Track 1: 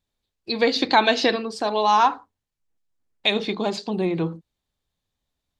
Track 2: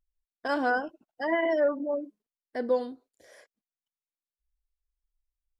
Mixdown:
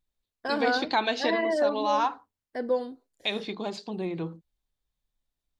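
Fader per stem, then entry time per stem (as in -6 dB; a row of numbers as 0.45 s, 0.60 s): -8.5 dB, -0.5 dB; 0.00 s, 0.00 s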